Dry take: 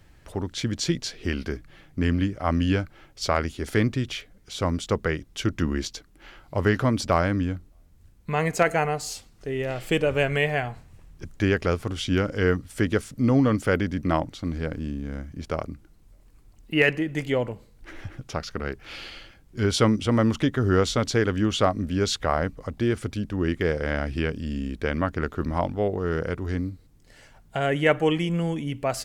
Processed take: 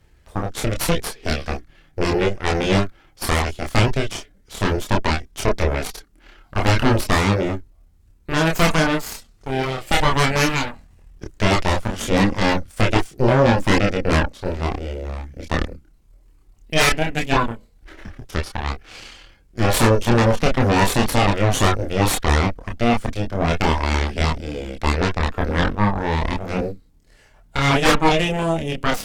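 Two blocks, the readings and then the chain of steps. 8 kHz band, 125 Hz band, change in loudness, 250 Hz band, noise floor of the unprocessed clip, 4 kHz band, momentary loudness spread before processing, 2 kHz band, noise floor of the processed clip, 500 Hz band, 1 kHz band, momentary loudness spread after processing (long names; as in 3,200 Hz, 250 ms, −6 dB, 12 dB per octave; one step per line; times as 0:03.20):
+7.5 dB, +5.5 dB, +5.0 dB, +3.0 dB, −55 dBFS, +7.5 dB, 13 LU, +6.0 dB, −54 dBFS, +3.5 dB, +8.5 dB, 13 LU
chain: harmonic generator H 4 −6 dB, 8 −7 dB, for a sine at −7.5 dBFS
multi-voice chorus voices 6, 0.15 Hz, delay 28 ms, depth 2.7 ms
level +1 dB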